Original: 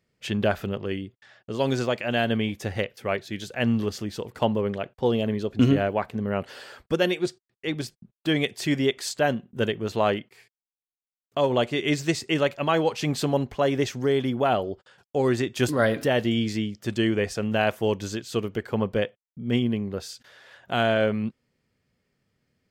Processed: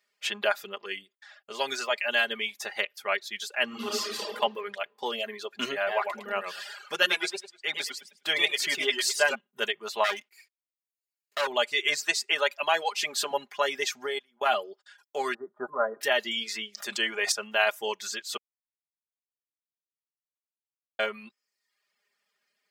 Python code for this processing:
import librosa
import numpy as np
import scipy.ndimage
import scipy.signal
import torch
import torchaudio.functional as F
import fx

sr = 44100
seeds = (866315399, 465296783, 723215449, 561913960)

y = fx.reverb_throw(x, sr, start_s=3.66, length_s=0.64, rt60_s=1.7, drr_db=-5.5)
y = fx.echo_warbled(y, sr, ms=104, feedback_pct=38, rate_hz=2.8, cents=137, wet_db=-3.5, at=(5.76, 9.35))
y = fx.lower_of_two(y, sr, delay_ms=0.42, at=(10.04, 11.47))
y = fx.highpass(y, sr, hz=200.0, slope=12, at=(12.02, 13.31))
y = fx.level_steps(y, sr, step_db=23, at=(14.06, 14.46))
y = fx.ellip_lowpass(y, sr, hz=1300.0, order=4, stop_db=50, at=(15.34, 16.01))
y = fx.sustainer(y, sr, db_per_s=57.0, at=(16.68, 17.32))
y = fx.edit(y, sr, fx.silence(start_s=18.37, length_s=2.62), tone=tone)
y = scipy.signal.sosfilt(scipy.signal.butter(2, 950.0, 'highpass', fs=sr, output='sos'), y)
y = y + 0.73 * np.pad(y, (int(4.9 * sr / 1000.0), 0))[:len(y)]
y = fx.dereverb_blind(y, sr, rt60_s=0.7)
y = F.gain(torch.from_numpy(y), 2.5).numpy()